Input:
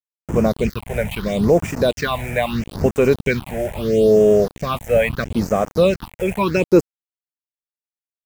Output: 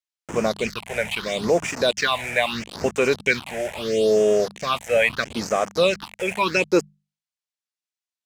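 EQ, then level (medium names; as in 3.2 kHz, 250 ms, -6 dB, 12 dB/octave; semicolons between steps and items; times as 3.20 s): distance through air 87 m; tilt EQ +4 dB/octave; hum notches 50/100/150/200 Hz; 0.0 dB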